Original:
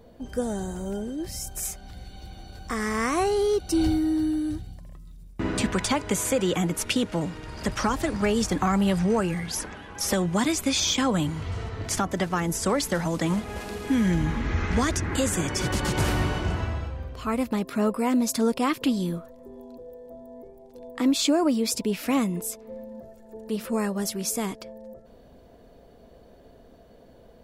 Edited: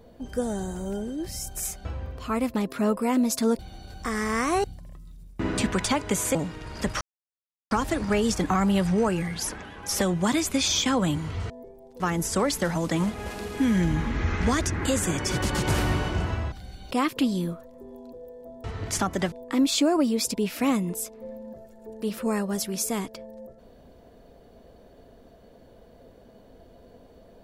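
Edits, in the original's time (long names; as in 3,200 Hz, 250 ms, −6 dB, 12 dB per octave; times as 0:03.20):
0:01.85–0:02.24: swap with 0:16.82–0:18.56
0:03.29–0:04.64: remove
0:06.35–0:07.17: remove
0:07.83: splice in silence 0.70 s
0:11.62–0:12.30: swap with 0:20.29–0:20.79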